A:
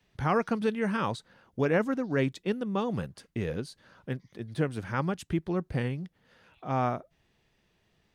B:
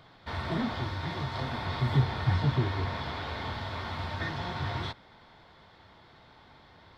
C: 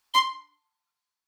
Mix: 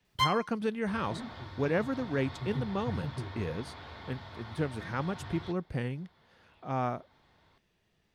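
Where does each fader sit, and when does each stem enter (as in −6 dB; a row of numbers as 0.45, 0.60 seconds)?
−3.5, −10.5, −6.5 decibels; 0.00, 0.60, 0.05 seconds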